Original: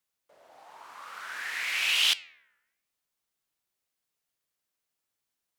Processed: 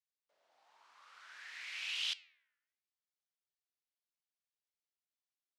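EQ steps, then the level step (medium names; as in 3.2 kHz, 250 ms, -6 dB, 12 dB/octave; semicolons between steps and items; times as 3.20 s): band-pass filter 4.9 kHz, Q 0.99; tilt EQ -3.5 dB/octave; -4.5 dB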